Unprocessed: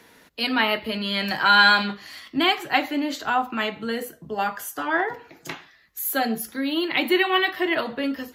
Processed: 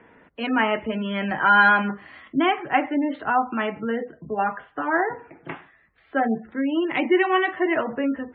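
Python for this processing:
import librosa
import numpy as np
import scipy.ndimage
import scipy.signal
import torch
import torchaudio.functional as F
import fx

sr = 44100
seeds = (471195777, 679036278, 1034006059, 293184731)

y = scipy.signal.sosfilt(scipy.signal.bessel(8, 1700.0, 'lowpass', norm='mag', fs=sr, output='sos'), x)
y = fx.spec_gate(y, sr, threshold_db=-30, keep='strong')
y = F.gain(torch.from_numpy(y), 2.5).numpy()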